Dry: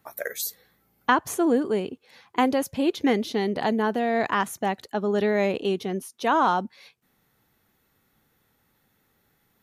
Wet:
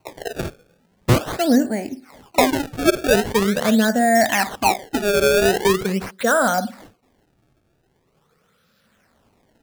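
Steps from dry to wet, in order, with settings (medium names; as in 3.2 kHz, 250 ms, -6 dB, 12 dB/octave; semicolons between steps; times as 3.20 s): drifting ripple filter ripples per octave 0.69, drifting +0.39 Hz, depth 20 dB; on a send at -12.5 dB: reverberation, pre-delay 45 ms; on the sum: decimation with a swept rate 25×, swing 160% 0.43 Hz; trim +1.5 dB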